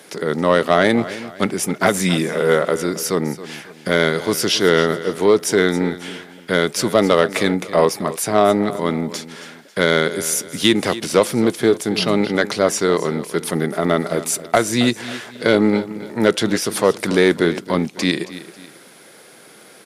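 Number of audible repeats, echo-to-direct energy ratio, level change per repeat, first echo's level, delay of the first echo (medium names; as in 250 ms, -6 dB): 2, -15.0 dB, -8.0 dB, -15.5 dB, 272 ms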